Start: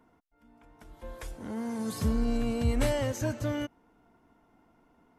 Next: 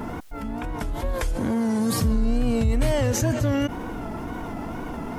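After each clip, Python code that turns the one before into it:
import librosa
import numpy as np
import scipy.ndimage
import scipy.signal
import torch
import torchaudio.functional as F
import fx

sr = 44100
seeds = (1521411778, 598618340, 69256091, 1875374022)

y = fx.low_shelf(x, sr, hz=170.0, db=6.5)
y = fx.wow_flutter(y, sr, seeds[0], rate_hz=2.1, depth_cents=91.0)
y = fx.env_flatten(y, sr, amount_pct=70)
y = y * 10.0 ** (-1.0 / 20.0)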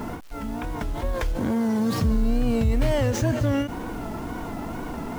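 y = scipy.signal.medfilt(x, 5)
y = fx.quant_dither(y, sr, seeds[1], bits=8, dither='none')
y = fx.end_taper(y, sr, db_per_s=140.0)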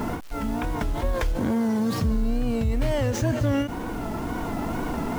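y = fx.rider(x, sr, range_db=4, speed_s=2.0)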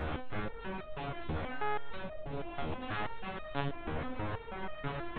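y = 10.0 ** (-28.0 / 20.0) * (np.abs((x / 10.0 ** (-28.0 / 20.0) + 3.0) % 4.0 - 2.0) - 1.0)
y = fx.lpc_monotone(y, sr, seeds[2], pitch_hz=140.0, order=8)
y = fx.resonator_held(y, sr, hz=6.2, low_hz=78.0, high_hz=620.0)
y = y * 10.0 ** (6.5 / 20.0)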